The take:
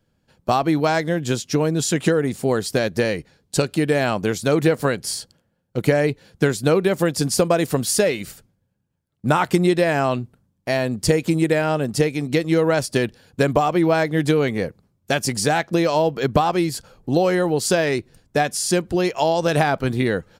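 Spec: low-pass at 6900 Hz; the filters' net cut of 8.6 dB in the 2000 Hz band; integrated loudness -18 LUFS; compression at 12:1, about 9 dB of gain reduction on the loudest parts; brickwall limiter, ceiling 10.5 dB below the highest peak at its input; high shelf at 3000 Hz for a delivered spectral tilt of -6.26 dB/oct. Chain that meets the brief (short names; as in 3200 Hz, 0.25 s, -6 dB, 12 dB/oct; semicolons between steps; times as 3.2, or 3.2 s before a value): LPF 6900 Hz; bell 2000 Hz -8.5 dB; high shelf 3000 Hz -8.5 dB; compressor 12:1, threshold -22 dBFS; gain +13.5 dB; limiter -7.5 dBFS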